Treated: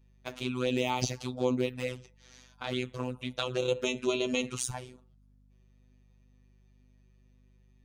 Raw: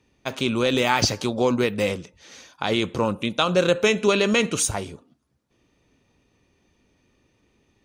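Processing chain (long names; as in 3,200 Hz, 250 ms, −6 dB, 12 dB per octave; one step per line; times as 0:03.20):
flanger swept by the level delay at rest 8.6 ms, full sweep at −16.5 dBFS
phases set to zero 126 Hz
mains hum 50 Hz, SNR 27 dB
level −6 dB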